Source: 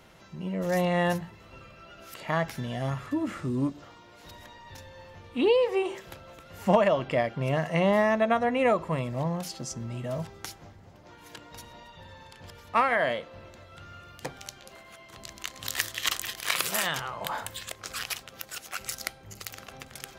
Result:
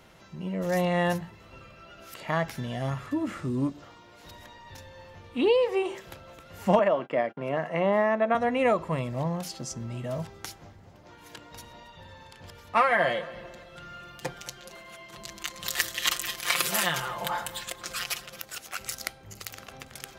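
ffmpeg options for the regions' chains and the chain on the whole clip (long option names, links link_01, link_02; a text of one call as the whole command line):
ffmpeg -i in.wav -filter_complex "[0:a]asettb=1/sr,asplit=3[link_01][link_02][link_03];[link_01]atrim=end=6.794[link_04];[link_02]atrim=start=6.79:end=8.35,asetpts=PTS-STARTPTS,afade=type=in:duration=0.004:curve=qsin,afade=type=out:start_time=1.556:duration=0.004:curve=qsin,agate=range=-34dB:threshold=-39dB:ratio=16:release=100:detection=peak,acrossover=split=180 2500:gain=0.0708 1 0.224[link_05][link_06][link_07];[link_05][link_06][link_07]amix=inputs=3:normalize=0[link_08];[link_03]atrim=start=8.346[link_09];[link_04][link_08]acrossfade=duration=0.004:curve1=hsin:curve2=qsin[link_10];[link_10][link_09]acrossfade=duration=0.004:curve1=qsin:curve2=hsin,asettb=1/sr,asplit=3[link_11][link_12][link_13];[link_11]atrim=end=12.764[link_14];[link_12]atrim=start=12.76:end=18.4,asetpts=PTS-STARTPTS,afade=type=in:duration=0.004:curve=qsin,afade=type=out:start_time=5.636:duration=0.004:curve=qsin,aecho=1:1:5.7:0.72,atrim=end_sample=248724,aecho=1:1:223|446|669:0.126|0.0415|0.0137,atrim=end_sample=248724[link_15];[link_13]atrim=start=18.396[link_16];[link_14][link_15]acrossfade=duration=0.004:curve1=hsin:curve2=qsin[link_17];[link_17][link_16]acrossfade=duration=0.004:curve1=qsin:curve2=hsin" out.wav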